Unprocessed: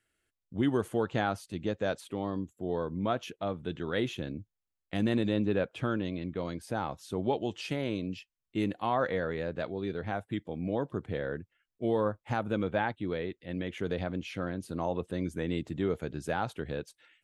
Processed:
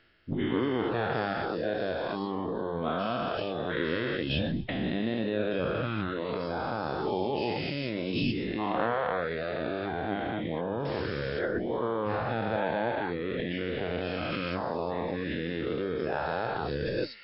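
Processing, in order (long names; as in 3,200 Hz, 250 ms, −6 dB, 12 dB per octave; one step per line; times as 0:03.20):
every bin's largest magnitude spread in time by 480 ms
reverb reduction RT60 0.9 s
mains-hum notches 50/100 Hz
in parallel at +3 dB: compressor whose output falls as the input rises −38 dBFS, ratio −0.5
0:10.85–0:11.39: on the sum: bit-depth reduction 6 bits, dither triangular
flanger 1.7 Hz, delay 6.5 ms, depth 8.3 ms, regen +83%
on a send: delay with a high-pass on its return 128 ms, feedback 61%, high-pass 4,000 Hz, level −16 dB
on the sum: MP3 32 kbit/s 12,000 Hz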